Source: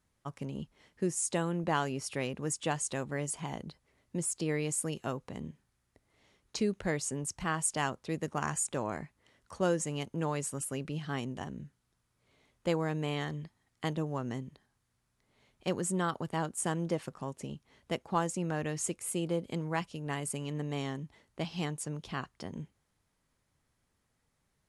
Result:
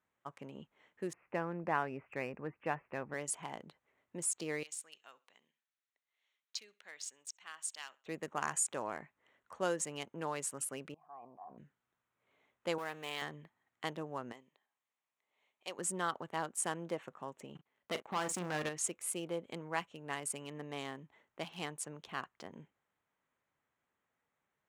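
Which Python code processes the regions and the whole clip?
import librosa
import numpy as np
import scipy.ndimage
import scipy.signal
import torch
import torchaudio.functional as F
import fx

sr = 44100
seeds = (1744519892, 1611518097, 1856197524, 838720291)

y = fx.chain(x, sr, fx.cheby1_lowpass(hz=2600.0, order=6),
    fx.low_shelf(hz=150.0, db=9.5), at=(1.13, 3.14))
y = fx.chain(y, sr, fx.bandpass_q(hz=4600.0, q=1.5),
    fx.echo_feedback(ms=66, feedback_pct=31, wet_db=-20.5), at=(4.63, 8.06))
y = fx.chain(y, sr, fx.formant_cascade(vowel='a'),
    fx.hum_notches(base_hz=50, count=3),
    fx.sustainer(db_per_s=21.0), at=(10.94, 11.58))
y = fx.chain(y, sr, fx.zero_step(step_db=-40.0),
    fx.highpass(hz=54.0, slope=12),
    fx.low_shelf(hz=450.0, db=-12.0), at=(12.78, 13.22))
y = fx.chain(y, sr, fx.highpass(hz=1100.0, slope=6),
    fx.peak_eq(hz=1500.0, db=-9.0, octaves=0.54), at=(14.32, 15.79))
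y = fx.chain(y, sr, fx.level_steps(step_db=12),
    fx.leveller(passes=3),
    fx.doubler(ms=39.0, db=-11), at=(17.55, 18.69))
y = fx.wiener(y, sr, points=9)
y = fx.highpass(y, sr, hz=740.0, slope=6)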